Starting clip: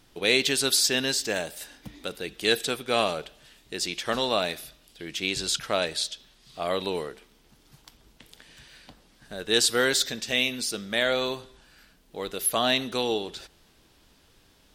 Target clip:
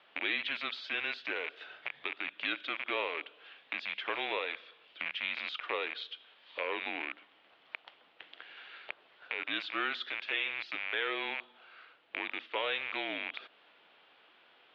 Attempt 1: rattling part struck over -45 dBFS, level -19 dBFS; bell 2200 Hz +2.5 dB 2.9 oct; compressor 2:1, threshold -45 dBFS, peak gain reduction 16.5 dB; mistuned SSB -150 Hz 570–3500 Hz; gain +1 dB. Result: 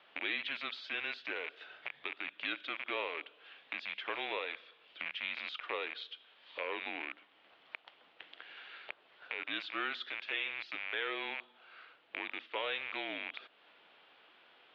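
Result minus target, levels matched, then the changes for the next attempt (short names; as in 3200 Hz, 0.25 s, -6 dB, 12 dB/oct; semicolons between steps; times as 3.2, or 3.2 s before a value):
compressor: peak gain reduction +3 dB
change: compressor 2:1, threshold -38.5 dBFS, peak gain reduction 13 dB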